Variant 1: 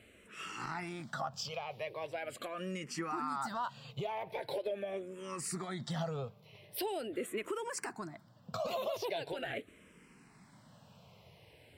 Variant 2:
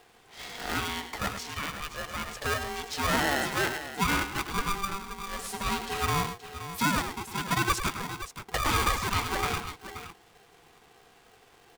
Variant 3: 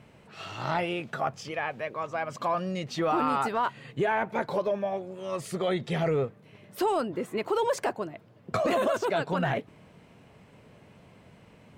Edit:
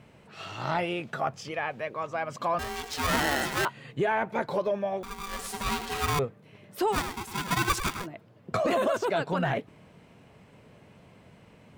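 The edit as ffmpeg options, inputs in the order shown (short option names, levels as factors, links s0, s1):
-filter_complex "[1:a]asplit=3[s0][s1][s2];[2:a]asplit=4[s3][s4][s5][s6];[s3]atrim=end=2.592[s7];[s0]atrim=start=2.588:end=3.652[s8];[s4]atrim=start=3.648:end=5.032[s9];[s1]atrim=start=5.028:end=6.192[s10];[s5]atrim=start=6.188:end=6.97[s11];[s2]atrim=start=6.91:end=8.07[s12];[s6]atrim=start=8.01[s13];[s7][s8]acrossfade=d=0.004:c1=hsin:c2=hsin[s14];[s14][s9]acrossfade=d=0.004:c1=hsin:c2=hsin[s15];[s15][s10]acrossfade=d=0.004:c1=hsin:c2=hsin[s16];[s16][s11]acrossfade=d=0.004:c1=hsin:c2=hsin[s17];[s17][s12]acrossfade=d=0.06:c1=tri:c2=tri[s18];[s18][s13]acrossfade=d=0.06:c1=tri:c2=tri"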